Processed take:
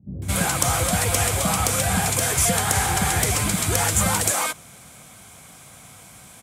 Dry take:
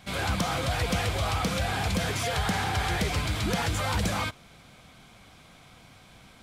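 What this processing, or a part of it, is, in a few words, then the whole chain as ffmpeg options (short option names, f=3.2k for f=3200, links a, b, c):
budget condenser microphone: -filter_complex "[0:a]highpass=72,highshelf=f=5.9k:t=q:w=1.5:g=11.5,acrossover=split=300[a][b];[b]adelay=220[c];[a][c]amix=inputs=2:normalize=0,volume=6dB"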